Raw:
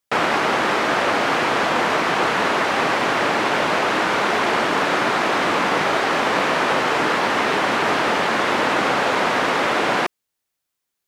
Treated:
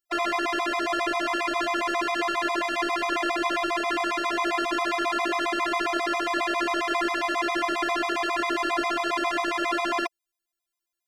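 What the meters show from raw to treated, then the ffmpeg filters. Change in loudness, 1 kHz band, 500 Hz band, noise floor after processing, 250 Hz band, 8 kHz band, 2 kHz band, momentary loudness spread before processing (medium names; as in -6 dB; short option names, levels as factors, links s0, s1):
-7.0 dB, -7.0 dB, -7.5 dB, under -85 dBFS, -4.5 dB, -7.0 dB, -7.5 dB, 0 LU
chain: -af "afftfilt=real='hypot(re,im)*cos(PI*b)':imag='0':win_size=512:overlap=0.75,afftfilt=real='re*gt(sin(2*PI*7.4*pts/sr)*(1-2*mod(floor(b*sr/1024/650),2)),0)':imag='im*gt(sin(2*PI*7.4*pts/sr)*(1-2*mod(floor(b*sr/1024/650),2)),0)':win_size=1024:overlap=0.75"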